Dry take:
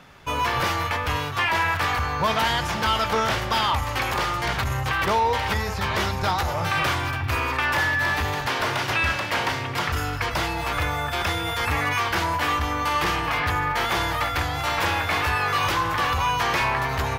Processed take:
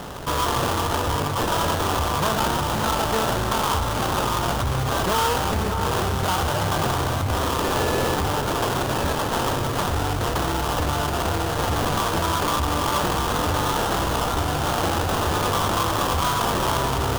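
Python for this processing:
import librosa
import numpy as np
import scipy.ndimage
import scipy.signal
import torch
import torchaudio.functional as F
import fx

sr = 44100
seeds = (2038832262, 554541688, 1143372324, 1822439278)

p1 = fx.cvsd(x, sr, bps=16000)
p2 = fx.sample_hold(p1, sr, seeds[0], rate_hz=2200.0, jitter_pct=20)
p3 = p2 + fx.echo_alternate(p2, sr, ms=579, hz=1700.0, feedback_pct=62, wet_db=-11.0, dry=0)
y = fx.env_flatten(p3, sr, amount_pct=50)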